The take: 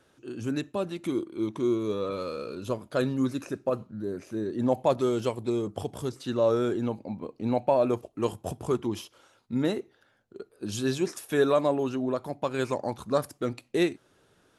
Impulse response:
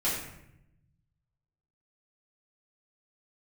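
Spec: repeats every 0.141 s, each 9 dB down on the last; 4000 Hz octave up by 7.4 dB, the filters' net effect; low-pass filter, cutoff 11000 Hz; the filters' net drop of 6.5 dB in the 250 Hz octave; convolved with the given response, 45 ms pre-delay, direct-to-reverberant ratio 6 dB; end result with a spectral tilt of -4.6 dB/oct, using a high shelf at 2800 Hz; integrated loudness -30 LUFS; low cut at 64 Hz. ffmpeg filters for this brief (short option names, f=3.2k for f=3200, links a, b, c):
-filter_complex "[0:a]highpass=64,lowpass=11k,equalizer=f=250:t=o:g=-9,highshelf=f=2.8k:g=3.5,equalizer=f=4k:t=o:g=6,aecho=1:1:141|282|423|564:0.355|0.124|0.0435|0.0152,asplit=2[a][b];[1:a]atrim=start_sample=2205,adelay=45[c];[b][c]afir=irnorm=-1:irlink=0,volume=-15dB[d];[a][d]amix=inputs=2:normalize=0"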